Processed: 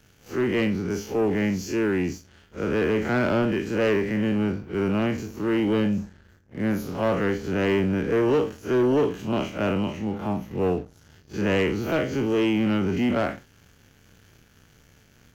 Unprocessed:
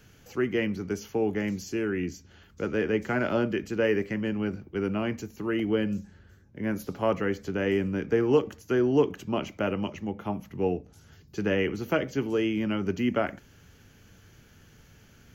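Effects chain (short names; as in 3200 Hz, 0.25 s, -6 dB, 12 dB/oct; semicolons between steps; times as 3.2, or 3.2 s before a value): time blur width 93 ms; sample leveller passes 2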